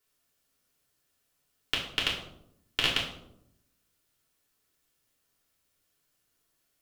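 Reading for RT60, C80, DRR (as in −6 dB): 0.80 s, 8.5 dB, −5.0 dB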